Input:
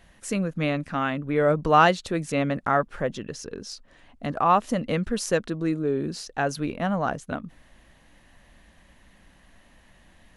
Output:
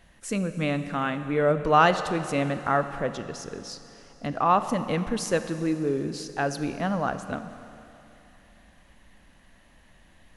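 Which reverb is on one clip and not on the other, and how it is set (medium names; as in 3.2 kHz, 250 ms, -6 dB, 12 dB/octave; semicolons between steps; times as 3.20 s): Schroeder reverb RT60 3 s, combs from 28 ms, DRR 10 dB; trim -1.5 dB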